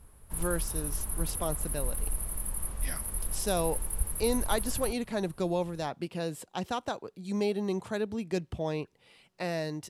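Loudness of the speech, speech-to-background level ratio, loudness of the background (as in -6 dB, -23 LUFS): -34.0 LUFS, 0.5 dB, -34.5 LUFS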